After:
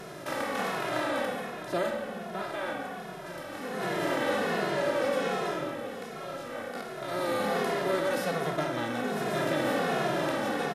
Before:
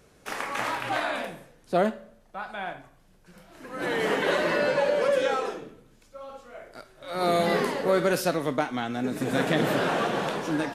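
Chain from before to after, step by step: per-bin compression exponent 0.4; spring tank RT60 3.8 s, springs 42/52/57 ms, chirp 80 ms, DRR 4.5 dB; endless flanger 2.4 ms -1.3 Hz; gain -8 dB

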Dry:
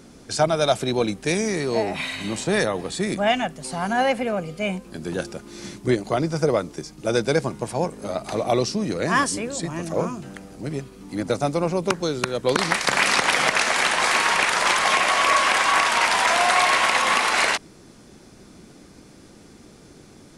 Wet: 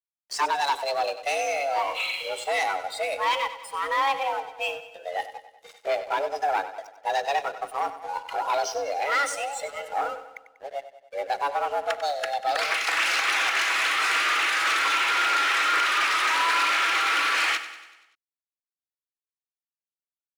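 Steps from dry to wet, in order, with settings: spectral noise reduction 17 dB; overdrive pedal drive 18 dB, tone 2600 Hz, clips at -6 dBFS; in parallel at -10 dB: wavefolder -17.5 dBFS; on the sum: frequency shift +280 Hz; crossover distortion -36 dBFS; on a send: feedback echo 96 ms, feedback 55%, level -13 dB; 5.69–6.84 on the sum: mismatched tape noise reduction encoder only; gain -8.5 dB

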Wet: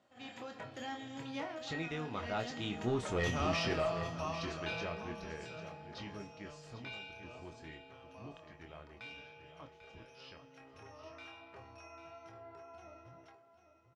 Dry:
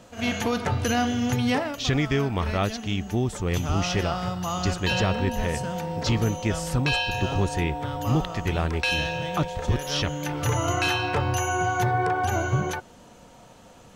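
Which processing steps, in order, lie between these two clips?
Doppler pass-by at 3.2, 33 m/s, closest 13 m; HPF 270 Hz 6 dB/oct; high shelf 9700 Hz -6 dB; resonator 630 Hz, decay 0.42 s, mix 80%; soft clip -37.5 dBFS, distortion -15 dB; air absorption 84 m; doubler 25 ms -6.5 dB; echo 0.794 s -11.5 dB; on a send at -21.5 dB: reverb RT60 3.0 s, pre-delay 19 ms; on the sum: gain +11.5 dB

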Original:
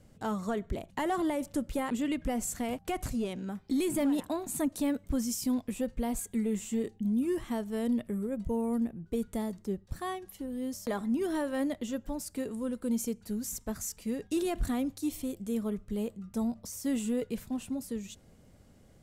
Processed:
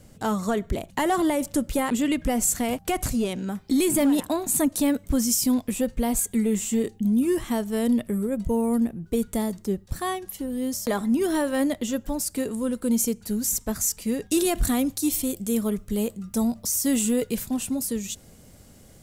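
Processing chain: high shelf 4600 Hz +7 dB, from 14.31 s +12 dB; gain +7.5 dB

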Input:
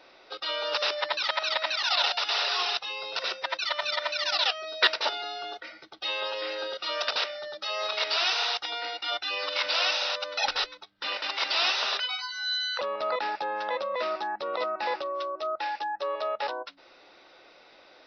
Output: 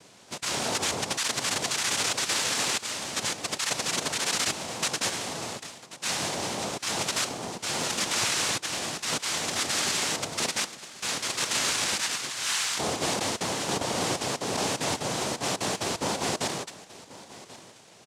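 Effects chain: noise vocoder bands 2; limiter -18 dBFS, peak gain reduction 10 dB; echo 1.085 s -18 dB; gain +1.5 dB

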